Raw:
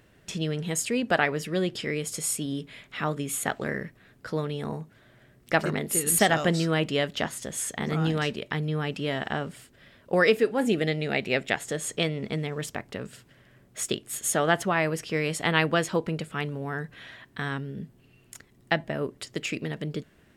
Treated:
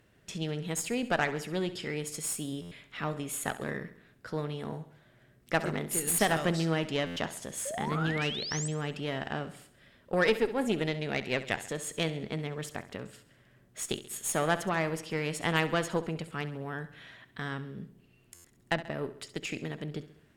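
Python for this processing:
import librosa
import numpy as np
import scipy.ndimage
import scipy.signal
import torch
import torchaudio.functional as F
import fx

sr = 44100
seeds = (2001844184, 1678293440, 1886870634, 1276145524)

p1 = fx.cheby_harmonics(x, sr, harmonics=(6,), levels_db=(-22,), full_scale_db=-6.5)
p2 = fx.spec_paint(p1, sr, seeds[0], shape='rise', start_s=7.65, length_s=1.03, low_hz=520.0, high_hz=8400.0, level_db=-32.0)
p3 = p2 + fx.echo_feedback(p2, sr, ms=67, feedback_pct=52, wet_db=-14.5, dry=0)
p4 = fx.buffer_glitch(p3, sr, at_s=(2.61, 7.06, 18.34), block=512, repeats=8)
y = p4 * 10.0 ** (-5.5 / 20.0)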